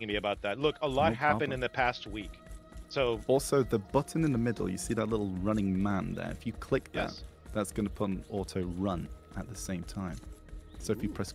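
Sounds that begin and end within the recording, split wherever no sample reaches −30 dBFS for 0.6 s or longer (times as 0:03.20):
0:02.97–0:10.15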